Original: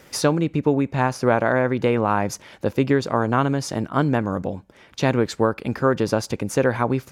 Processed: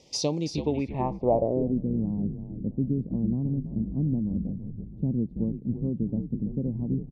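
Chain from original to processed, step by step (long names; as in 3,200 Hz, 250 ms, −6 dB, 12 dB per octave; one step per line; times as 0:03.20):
Butterworth band-reject 1,500 Hz, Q 0.88
echo with shifted repeats 330 ms, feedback 56%, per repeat −81 Hz, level −9 dB
low-pass filter sweep 5,500 Hz → 210 Hz, 0:00.49–0:01.81
level −8 dB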